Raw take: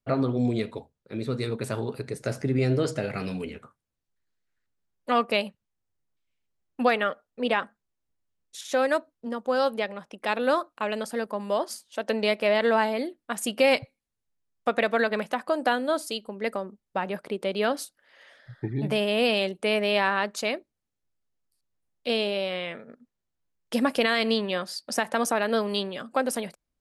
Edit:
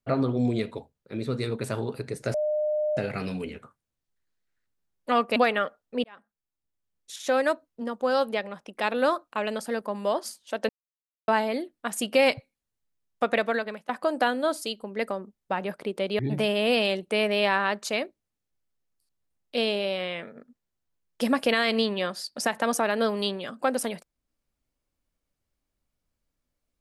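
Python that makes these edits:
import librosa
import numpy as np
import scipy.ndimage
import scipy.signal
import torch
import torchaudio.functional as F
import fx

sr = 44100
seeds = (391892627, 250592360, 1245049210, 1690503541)

y = fx.edit(x, sr, fx.bleep(start_s=2.34, length_s=0.63, hz=606.0, db=-23.0),
    fx.cut(start_s=5.36, length_s=1.45),
    fx.fade_in_span(start_s=7.49, length_s=1.13),
    fx.silence(start_s=12.14, length_s=0.59),
    fx.fade_out_to(start_s=14.82, length_s=0.52, floor_db=-21.5),
    fx.cut(start_s=17.64, length_s=1.07), tone=tone)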